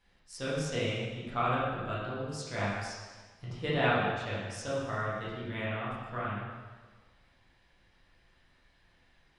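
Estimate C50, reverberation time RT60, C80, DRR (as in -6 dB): -1.0 dB, 1.4 s, 1.5 dB, -8.0 dB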